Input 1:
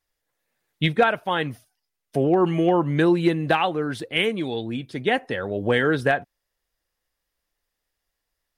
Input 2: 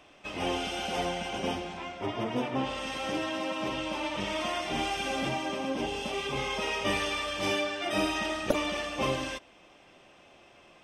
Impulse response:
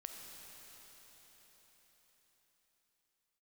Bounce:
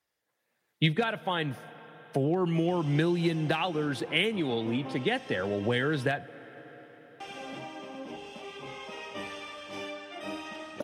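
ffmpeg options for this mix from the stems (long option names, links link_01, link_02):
-filter_complex "[0:a]volume=0dB,asplit=2[link_01][link_02];[link_02]volume=-14.5dB[link_03];[1:a]adelay=2300,volume=-9dB,asplit=3[link_04][link_05][link_06];[link_04]atrim=end=6.06,asetpts=PTS-STARTPTS,afade=type=out:start_time=6.056:duration=0.004:curve=hsin[link_07];[link_05]atrim=start=6.06:end=7.2,asetpts=PTS-STARTPTS,volume=0[link_08];[link_06]atrim=start=7.2,asetpts=PTS-STARTPTS,afade=type=in:duration=0.004:curve=hsin[link_09];[link_07][link_08][link_09]concat=n=3:v=0:a=1[link_10];[2:a]atrim=start_sample=2205[link_11];[link_03][link_11]afir=irnorm=-1:irlink=0[link_12];[link_01][link_10][link_12]amix=inputs=3:normalize=0,highpass=120,highshelf=frequency=4300:gain=-5.5,acrossover=split=160|3000[link_13][link_14][link_15];[link_14]acompressor=threshold=-27dB:ratio=6[link_16];[link_13][link_16][link_15]amix=inputs=3:normalize=0"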